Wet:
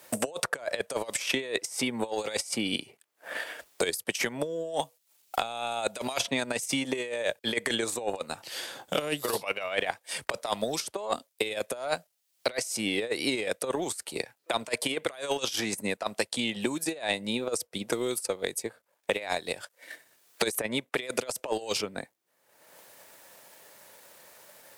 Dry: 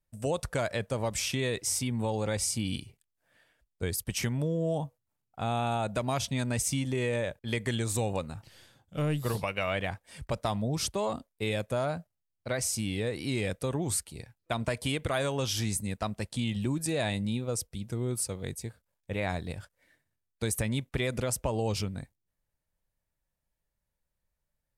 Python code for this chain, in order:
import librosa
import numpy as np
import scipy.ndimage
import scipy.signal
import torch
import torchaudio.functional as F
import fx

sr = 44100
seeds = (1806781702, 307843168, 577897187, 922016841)

y = scipy.signal.sosfilt(scipy.signal.cheby1(2, 1.0, 460.0, 'highpass', fs=sr, output='sos'), x)
y = fx.over_compress(y, sr, threshold_db=-36.0, ratio=-0.5)
y = fx.transient(y, sr, attack_db=7, sustain_db=-4)
y = fx.band_squash(y, sr, depth_pct=100)
y = F.gain(torch.from_numpy(y), 3.5).numpy()